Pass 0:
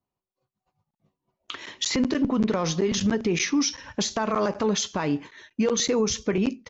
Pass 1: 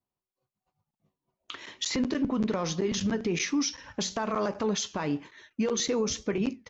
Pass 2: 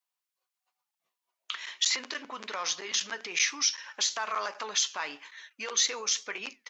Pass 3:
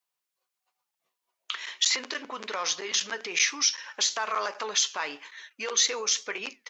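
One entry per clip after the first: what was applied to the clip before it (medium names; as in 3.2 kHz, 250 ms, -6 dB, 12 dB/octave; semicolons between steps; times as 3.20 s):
flange 1.1 Hz, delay 2.5 ms, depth 5.9 ms, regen -89%
high-pass 1.3 kHz 12 dB/octave; trim +5.5 dB
peaking EQ 440 Hz +4 dB 0.7 oct; trim +2.5 dB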